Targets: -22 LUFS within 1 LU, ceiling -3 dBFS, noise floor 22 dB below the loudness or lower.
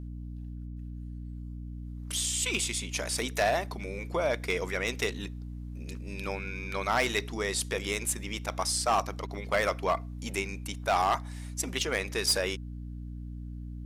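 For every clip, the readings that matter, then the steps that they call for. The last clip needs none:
clipped samples 0.3%; clipping level -19.0 dBFS; hum 60 Hz; highest harmonic 300 Hz; hum level -37 dBFS; loudness -30.5 LUFS; peak level -19.0 dBFS; loudness target -22.0 LUFS
-> clip repair -19 dBFS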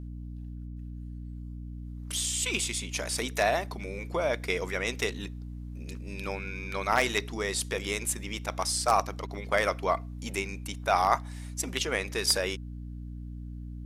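clipped samples 0.0%; hum 60 Hz; highest harmonic 300 Hz; hum level -37 dBFS
-> hum notches 60/120/180/240/300 Hz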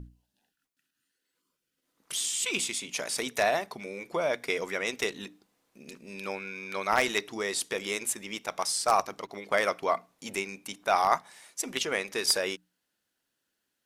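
hum not found; loudness -30.0 LUFS; peak level -9.5 dBFS; loudness target -22.0 LUFS
-> trim +8 dB; peak limiter -3 dBFS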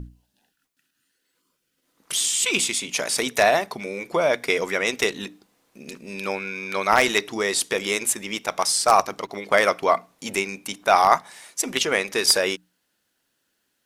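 loudness -22.0 LUFS; peak level -3.0 dBFS; noise floor -74 dBFS

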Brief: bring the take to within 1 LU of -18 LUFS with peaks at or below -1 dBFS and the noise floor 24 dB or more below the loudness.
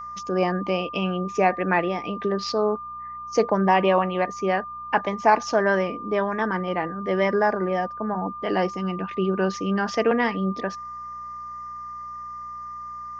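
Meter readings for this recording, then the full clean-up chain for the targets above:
hum 60 Hz; highest harmonic 240 Hz; hum level -51 dBFS; steady tone 1.2 kHz; tone level -33 dBFS; loudness -24.0 LUFS; peak level -5.5 dBFS; loudness target -18.0 LUFS
-> de-hum 60 Hz, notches 4; band-stop 1.2 kHz, Q 30; trim +6 dB; peak limiter -1 dBFS

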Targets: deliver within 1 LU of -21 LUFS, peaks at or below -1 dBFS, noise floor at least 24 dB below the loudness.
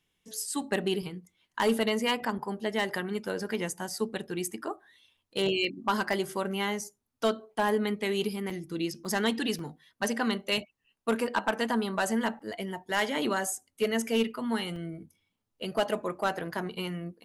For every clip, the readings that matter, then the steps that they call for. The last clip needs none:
clipped samples 0.2%; clipping level -18.5 dBFS; dropouts 6; longest dropout 2.7 ms; loudness -31.0 LUFS; peak level -18.5 dBFS; loudness target -21.0 LUFS
-> clip repair -18.5 dBFS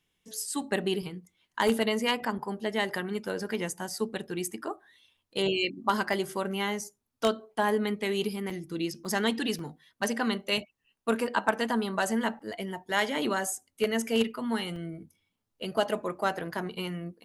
clipped samples 0.0%; dropouts 6; longest dropout 2.7 ms
-> interpolate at 3.90/6.13/8.50/9.05/9.59/14.76 s, 2.7 ms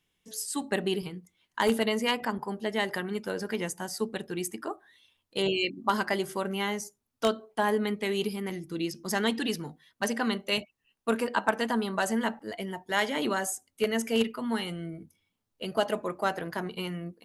dropouts 0; loudness -30.5 LUFS; peak level -9.5 dBFS; loudness target -21.0 LUFS
-> trim +9.5 dB; peak limiter -1 dBFS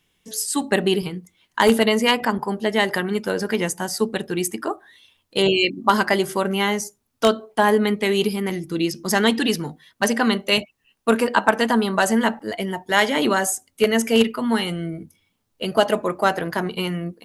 loudness -21.0 LUFS; peak level -1.0 dBFS; noise floor -71 dBFS

